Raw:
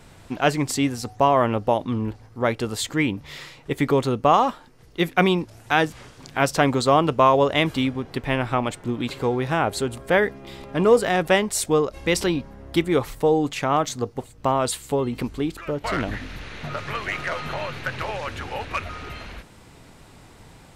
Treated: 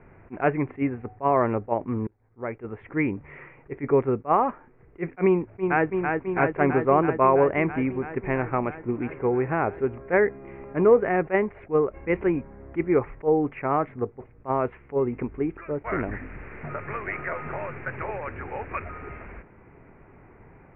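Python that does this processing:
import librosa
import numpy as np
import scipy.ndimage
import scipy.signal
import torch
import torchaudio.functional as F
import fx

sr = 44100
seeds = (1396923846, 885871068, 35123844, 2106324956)

y = fx.echo_throw(x, sr, start_s=5.25, length_s=0.61, ms=330, feedback_pct=80, wet_db=-4.0)
y = fx.edit(y, sr, fx.fade_in_span(start_s=2.07, length_s=0.95), tone=tone)
y = scipy.signal.sosfilt(scipy.signal.butter(12, 2400.0, 'lowpass', fs=sr, output='sos'), y)
y = fx.peak_eq(y, sr, hz=390.0, db=6.5, octaves=0.4)
y = fx.attack_slew(y, sr, db_per_s=390.0)
y = y * librosa.db_to_amplitude(-3.5)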